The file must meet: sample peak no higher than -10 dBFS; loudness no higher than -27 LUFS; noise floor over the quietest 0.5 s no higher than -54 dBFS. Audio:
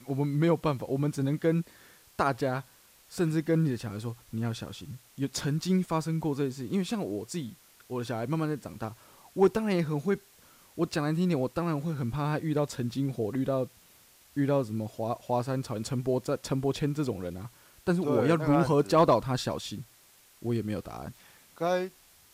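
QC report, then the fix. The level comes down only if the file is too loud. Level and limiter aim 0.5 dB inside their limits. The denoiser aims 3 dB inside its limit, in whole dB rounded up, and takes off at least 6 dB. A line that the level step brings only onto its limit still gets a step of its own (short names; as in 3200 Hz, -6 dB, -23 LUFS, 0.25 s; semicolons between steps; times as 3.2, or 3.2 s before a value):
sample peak -13.0 dBFS: OK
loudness -30.0 LUFS: OK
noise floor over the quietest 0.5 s -59 dBFS: OK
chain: none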